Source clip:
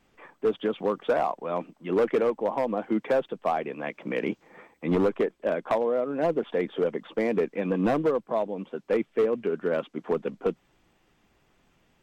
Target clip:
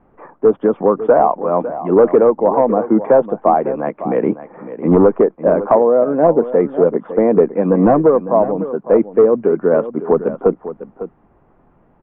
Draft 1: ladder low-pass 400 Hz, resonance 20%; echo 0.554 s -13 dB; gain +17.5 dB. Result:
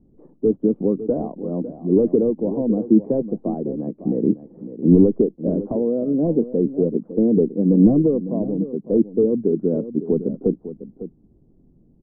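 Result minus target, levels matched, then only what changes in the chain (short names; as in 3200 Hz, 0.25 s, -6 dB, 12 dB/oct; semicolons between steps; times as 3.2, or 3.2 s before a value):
1000 Hz band -17.5 dB
change: ladder low-pass 1400 Hz, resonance 20%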